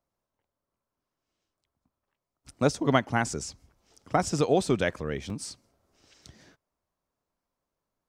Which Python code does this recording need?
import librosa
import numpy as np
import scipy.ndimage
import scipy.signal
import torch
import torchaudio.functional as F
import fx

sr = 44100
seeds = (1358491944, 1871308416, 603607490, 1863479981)

y = fx.fix_interpolate(x, sr, at_s=(5.3,), length_ms=1.6)